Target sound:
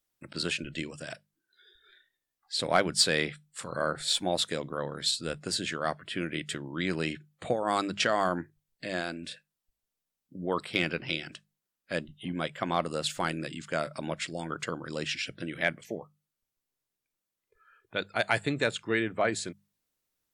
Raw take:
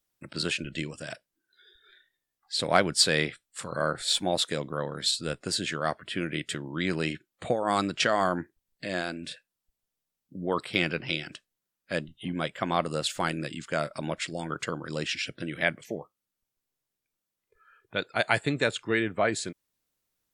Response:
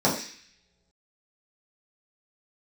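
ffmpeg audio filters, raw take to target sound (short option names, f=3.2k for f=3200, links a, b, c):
-filter_complex "[0:a]bandreject=f=50:t=h:w=6,bandreject=f=100:t=h:w=6,bandreject=f=150:t=h:w=6,bandreject=f=200:t=h:w=6,asplit=2[a][b];[b]asoftclip=type=hard:threshold=-13dB,volume=-4dB[c];[a][c]amix=inputs=2:normalize=0,volume=-6dB"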